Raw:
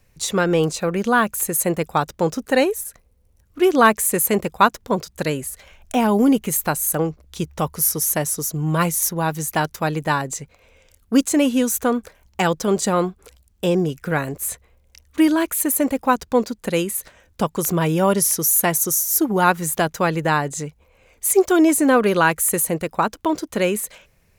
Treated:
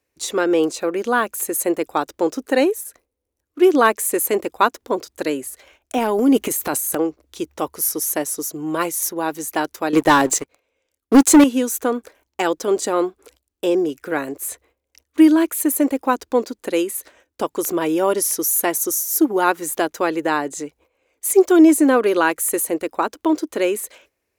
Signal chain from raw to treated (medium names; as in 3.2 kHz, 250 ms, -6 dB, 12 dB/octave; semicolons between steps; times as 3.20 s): high-pass 49 Hz; gate -50 dBFS, range -10 dB; resonant low shelf 230 Hz -9 dB, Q 3; 5.98–6.96 s: transient shaper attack -3 dB, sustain +9 dB; 9.93–11.44 s: waveshaping leveller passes 3; trim -2 dB